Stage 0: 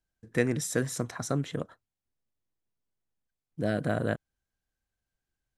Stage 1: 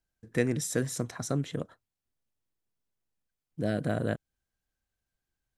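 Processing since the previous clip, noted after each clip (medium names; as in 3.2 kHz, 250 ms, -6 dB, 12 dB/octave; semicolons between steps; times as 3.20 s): dynamic bell 1.2 kHz, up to -4 dB, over -45 dBFS, Q 0.76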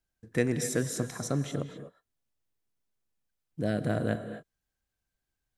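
gated-style reverb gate 280 ms rising, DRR 9 dB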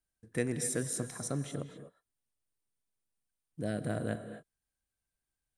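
peaking EQ 9.1 kHz +13.5 dB 0.2 oct; trim -5.5 dB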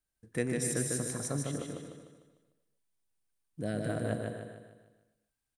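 feedback delay 150 ms, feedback 45%, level -3.5 dB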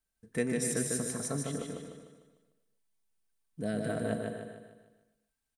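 comb 4.5 ms, depth 40%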